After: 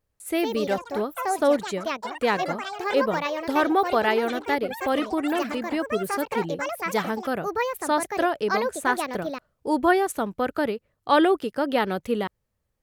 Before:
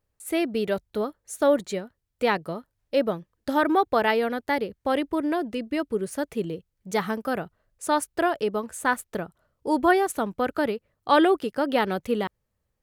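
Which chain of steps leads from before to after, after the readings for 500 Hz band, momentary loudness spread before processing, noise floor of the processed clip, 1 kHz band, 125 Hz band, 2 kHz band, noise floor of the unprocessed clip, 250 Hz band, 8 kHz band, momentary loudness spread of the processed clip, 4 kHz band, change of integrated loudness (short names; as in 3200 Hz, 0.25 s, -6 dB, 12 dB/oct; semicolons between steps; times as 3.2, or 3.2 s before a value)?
+0.5 dB, 12 LU, -77 dBFS, +1.5 dB, 0.0 dB, +1.5 dB, -78 dBFS, 0.0 dB, +1.0 dB, 8 LU, +2.0 dB, +0.5 dB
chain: vibrato 0.89 Hz 8.2 cents; echoes that change speed 0.19 s, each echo +5 st, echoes 3, each echo -6 dB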